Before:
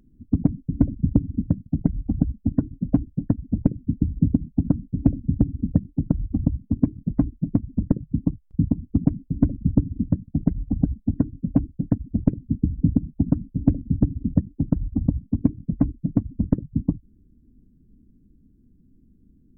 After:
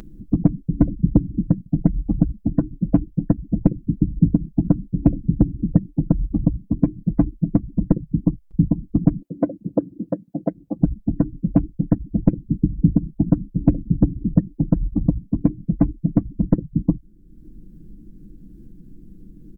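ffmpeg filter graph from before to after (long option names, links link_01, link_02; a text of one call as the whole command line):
ffmpeg -i in.wav -filter_complex "[0:a]asettb=1/sr,asplit=3[link_01][link_02][link_03];[link_01]atrim=end=9.224[link_04];[link_02]atrim=start=9.22:end=10.82,asetpts=PTS-STARTPTS,afade=type=in:duration=0.004:curve=qsin,afade=type=out:start_time=1.596:duration=0.004:curve=qsin,highpass=320,equalizer=frequency=570:width_type=o:width=0.71:gain=12[link_05];[link_03]atrim=start=10.816[link_06];[link_04][link_05]acrossfade=duration=0.004:curve1=hsin:curve2=qsin[link_07];[link_07][link_06]acrossfade=duration=0.004:curve1=qsin:curve2=hsin,equalizer=frequency=140:width=1.5:gain=-3.5,aecho=1:1:6:0.69,acompressor=mode=upward:threshold=-34dB:ratio=2.5,volume=4dB" out.wav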